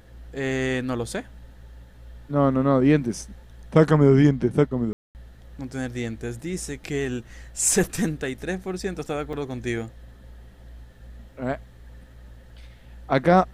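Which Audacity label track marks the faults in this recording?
4.930000	5.150000	gap 0.219 s
9.330000	9.330000	gap 2.6 ms

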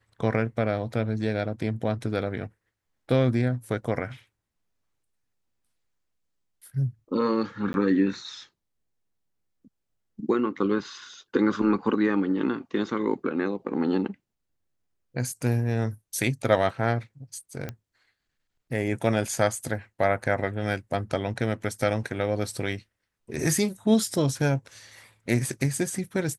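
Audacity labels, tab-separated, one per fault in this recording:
7.730000	7.740000	gap 11 ms
17.690000	17.690000	pop -19 dBFS

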